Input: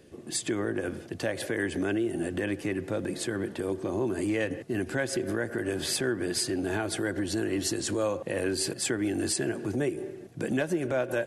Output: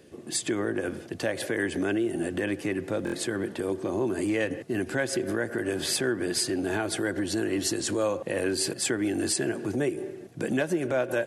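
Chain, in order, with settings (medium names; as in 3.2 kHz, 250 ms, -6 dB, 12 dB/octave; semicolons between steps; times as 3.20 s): bass shelf 77 Hz -9 dB; buffer glitch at 3.05 s, samples 1024, times 3; trim +2 dB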